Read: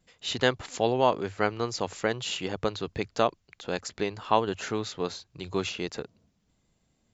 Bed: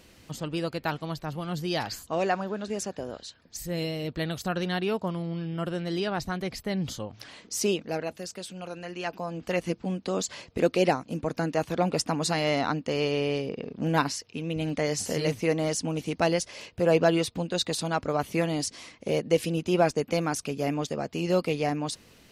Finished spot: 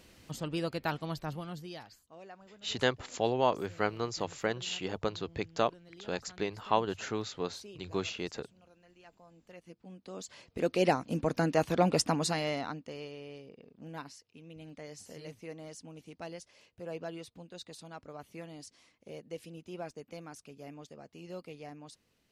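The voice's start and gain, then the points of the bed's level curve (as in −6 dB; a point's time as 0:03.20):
2.40 s, −4.5 dB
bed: 0:01.30 −3.5 dB
0:02.02 −24 dB
0:09.60 −24 dB
0:11.04 −0.5 dB
0:12.07 −0.5 dB
0:13.17 −19 dB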